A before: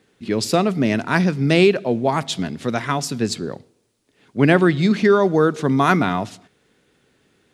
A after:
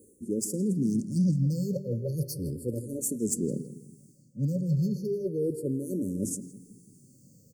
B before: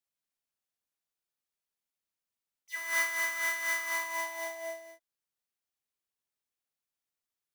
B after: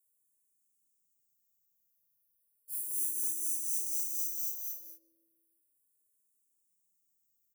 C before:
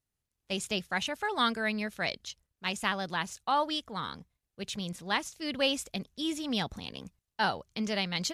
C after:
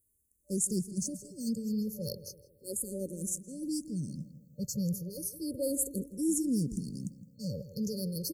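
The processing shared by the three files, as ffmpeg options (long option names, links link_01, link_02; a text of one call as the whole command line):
ffmpeg -i in.wav -filter_complex "[0:a]asplit=2[link_01][link_02];[link_02]adynamicsmooth=sensitivity=3:basefreq=2500,volume=-3dB[link_03];[link_01][link_03]amix=inputs=2:normalize=0,aexciter=amount=5:drive=7.4:freq=6700,areverse,acompressor=threshold=-25dB:ratio=10,areverse,asplit=2[link_04][link_05];[link_05]adelay=164,lowpass=frequency=2200:poles=1,volume=-13dB,asplit=2[link_06][link_07];[link_07]adelay=164,lowpass=frequency=2200:poles=1,volume=0.46,asplit=2[link_08][link_09];[link_09]adelay=164,lowpass=frequency=2200:poles=1,volume=0.46,asplit=2[link_10][link_11];[link_11]adelay=164,lowpass=frequency=2200:poles=1,volume=0.46,asplit=2[link_12][link_13];[link_13]adelay=164,lowpass=frequency=2200:poles=1,volume=0.46[link_14];[link_04][link_06][link_08][link_10][link_12][link_14]amix=inputs=6:normalize=0,afftfilt=real='re*(1-between(b*sr/4096,590,4300))':imag='im*(1-between(b*sr/4096,590,4300))':win_size=4096:overlap=0.75,equalizer=frequency=130:width_type=o:width=1.2:gain=7.5,asplit=2[link_15][link_16];[link_16]afreqshift=-0.34[link_17];[link_15][link_17]amix=inputs=2:normalize=1" out.wav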